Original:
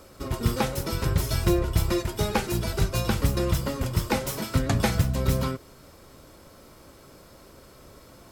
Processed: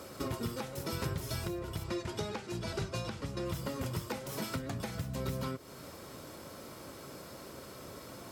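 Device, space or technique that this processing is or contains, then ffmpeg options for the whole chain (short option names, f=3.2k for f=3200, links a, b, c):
podcast mastering chain: -filter_complex "[0:a]asplit=3[a][b][c];[a]afade=t=out:st=1.83:d=0.02[d];[b]lowpass=7.1k,afade=t=in:st=1.83:d=0.02,afade=t=out:st=3.44:d=0.02[e];[c]afade=t=in:st=3.44:d=0.02[f];[d][e][f]amix=inputs=3:normalize=0,highpass=100,deesser=0.55,acompressor=threshold=-38dB:ratio=3,alimiter=level_in=3.5dB:limit=-24dB:level=0:latency=1:release=423,volume=-3.5dB,volume=3.5dB" -ar 44100 -c:a libmp3lame -b:a 112k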